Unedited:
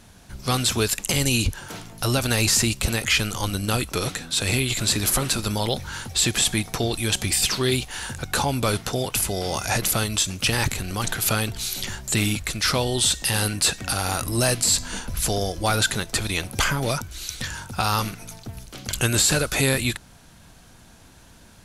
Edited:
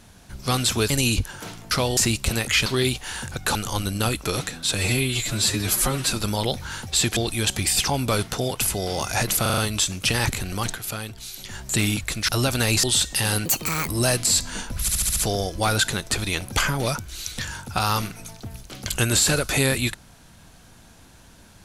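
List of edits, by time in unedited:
0.90–1.18 s: delete
1.99–2.54 s: swap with 12.67–12.93 s
4.43–5.34 s: stretch 1.5×
6.39–6.82 s: delete
7.53–8.42 s: move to 3.23 s
9.96 s: stutter 0.04 s, 5 plays
11.03–12.00 s: dip -8.5 dB, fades 0.14 s
13.55–14.26 s: speed 166%
15.19 s: stutter 0.07 s, 6 plays

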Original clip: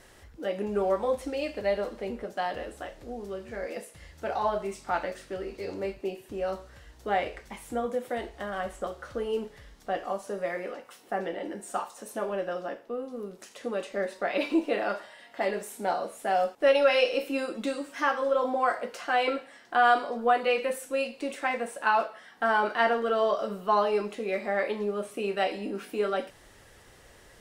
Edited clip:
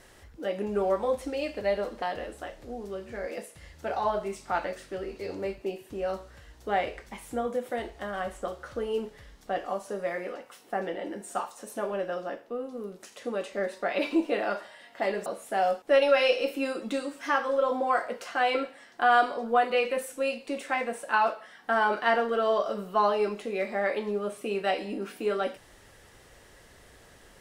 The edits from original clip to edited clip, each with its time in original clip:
2.02–2.41 s: delete
15.65–15.99 s: delete

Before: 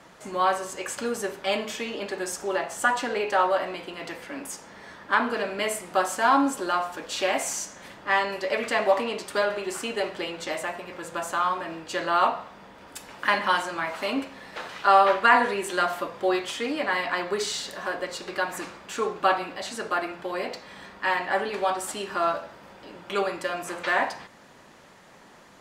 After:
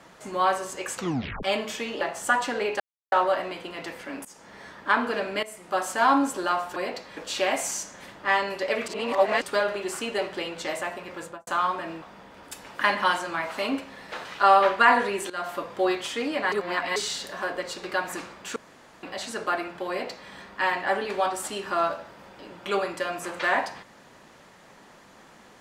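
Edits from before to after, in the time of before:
0.95 s: tape stop 0.48 s
2.01–2.56 s: delete
3.35 s: insert silence 0.32 s
4.48–4.88 s: fade in equal-power, from -19 dB
5.66–6.37 s: fade in equal-power, from -17.5 dB
8.70–9.24 s: reverse
11.03–11.29 s: studio fade out
11.84–12.46 s: delete
15.74–16.17 s: fade in equal-power, from -18.5 dB
16.96–17.40 s: reverse
19.00–19.47 s: room tone
20.33–20.74 s: copy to 6.99 s

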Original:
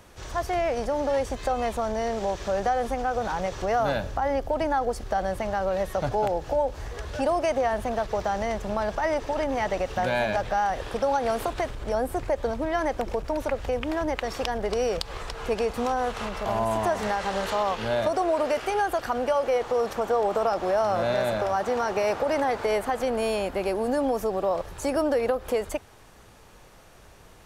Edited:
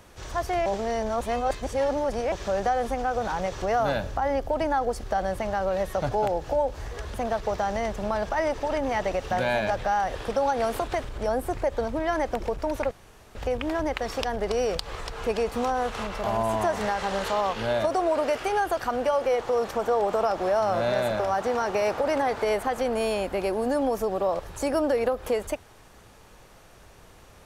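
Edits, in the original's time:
0.66–2.32 s: reverse
7.14–7.80 s: delete
13.57 s: insert room tone 0.44 s

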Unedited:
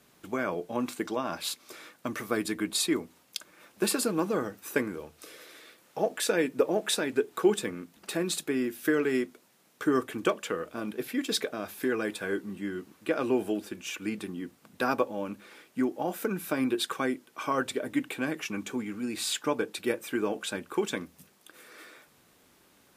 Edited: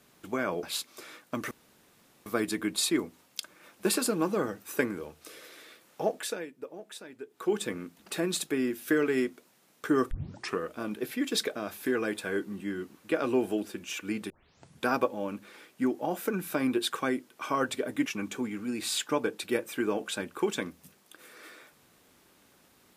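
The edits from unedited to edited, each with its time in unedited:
0.63–1.35 s: delete
2.23 s: insert room tone 0.75 s
5.99–7.70 s: dip -16.5 dB, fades 0.45 s
10.08 s: tape start 0.48 s
14.27 s: tape start 0.57 s
18.03–18.41 s: delete

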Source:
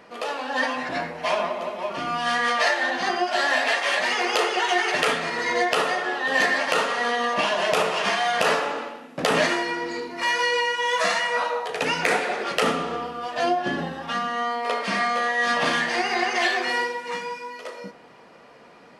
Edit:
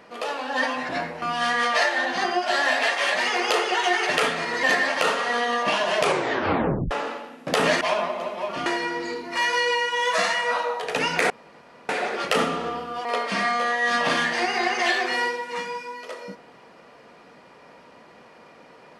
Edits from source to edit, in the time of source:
1.22–2.07 s: move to 9.52 s
5.48–6.34 s: delete
7.72 s: tape stop 0.90 s
12.16 s: insert room tone 0.59 s
13.32–14.61 s: delete

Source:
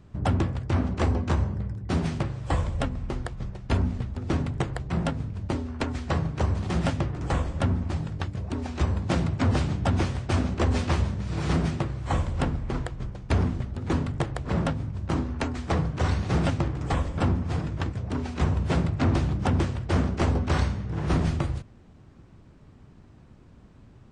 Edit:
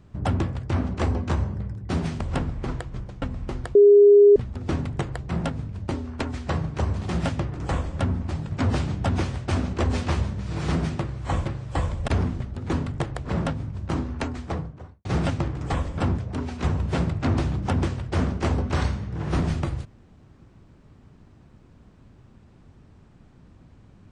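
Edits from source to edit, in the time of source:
2.21–2.83 s: swap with 12.27–13.28 s
3.36–3.97 s: bleep 408 Hz -9 dBFS
8.13–9.33 s: delete
15.39–16.25 s: studio fade out
17.38–17.95 s: delete

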